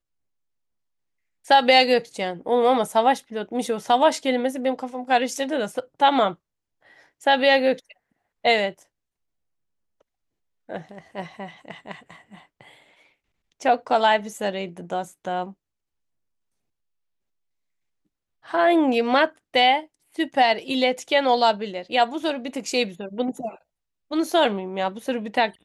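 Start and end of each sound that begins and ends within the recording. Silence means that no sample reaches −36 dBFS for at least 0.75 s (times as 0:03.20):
0:01.47–0:06.34
0:07.22–0:08.72
0:10.69–0:12.61
0:13.61–0:15.51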